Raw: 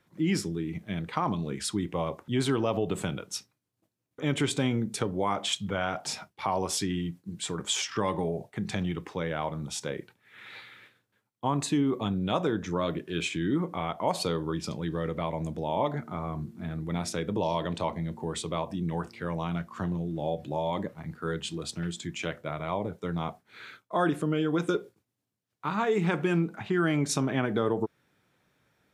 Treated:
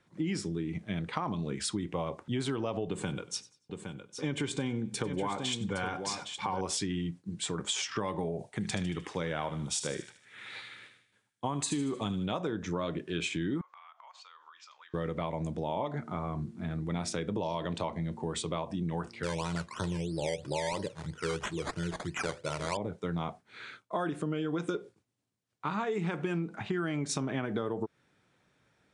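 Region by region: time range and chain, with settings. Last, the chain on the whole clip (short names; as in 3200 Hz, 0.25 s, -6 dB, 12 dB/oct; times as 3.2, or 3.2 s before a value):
2.88–6.61 notch comb 650 Hz + echo 0.814 s -9.5 dB + warbling echo 95 ms, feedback 30%, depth 60 cents, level -20 dB
8.39–12.26 high shelf 6600 Hz +11 dB + thin delay 76 ms, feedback 47%, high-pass 1600 Hz, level -9 dB
13.61–14.94 elliptic band-pass 1100–6900 Hz, stop band 60 dB + high shelf 2700 Hz -11 dB + compressor 12:1, threshold -49 dBFS
19.23–22.77 comb 2.1 ms, depth 54% + decimation with a swept rate 13×, swing 60% 3 Hz
whole clip: steep low-pass 10000 Hz 72 dB/oct; compressor, threshold -29 dBFS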